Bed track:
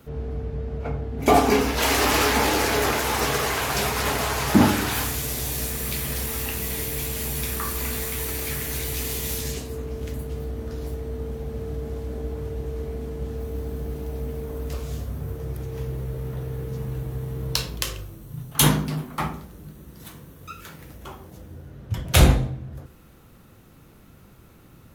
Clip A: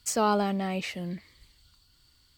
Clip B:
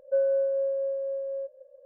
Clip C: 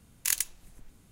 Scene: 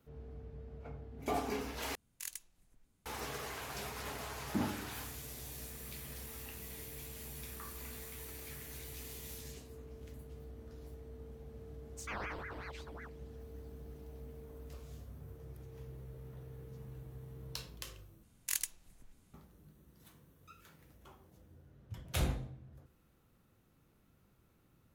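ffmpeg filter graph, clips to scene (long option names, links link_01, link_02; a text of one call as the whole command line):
ffmpeg -i bed.wav -i cue0.wav -i cue1.wav -i cue2.wav -filter_complex "[3:a]asplit=2[link_01][link_02];[0:a]volume=-19dB[link_03];[1:a]aeval=exprs='val(0)*sin(2*PI*990*n/s+990*0.9/5.4*sin(2*PI*5.4*n/s))':channel_layout=same[link_04];[link_03]asplit=3[link_05][link_06][link_07];[link_05]atrim=end=1.954[link_08];[link_01]atrim=end=1.11,asetpts=PTS-STARTPTS,volume=-16.5dB[link_09];[link_06]atrim=start=3.056:end=18.234[link_10];[link_02]atrim=end=1.11,asetpts=PTS-STARTPTS,volume=-8dB[link_11];[link_07]atrim=start=19.336[link_12];[link_04]atrim=end=2.37,asetpts=PTS-STARTPTS,volume=-15dB,afade=type=in:duration=0.1,afade=type=out:start_time=2.27:duration=0.1,adelay=11910[link_13];[link_08][link_09]acrossfade=duration=0.004:curve1=hsin:curve2=hsin[link_14];[link_14][link_10]acrossfade=duration=0.004:curve1=hsin:curve2=hsin[link_15];[link_15][link_11]acrossfade=duration=0.004:curve1=hsin:curve2=hsin[link_16];[link_16][link_12]acrossfade=duration=0.004:curve1=hsin:curve2=hsin[link_17];[link_17][link_13]amix=inputs=2:normalize=0" out.wav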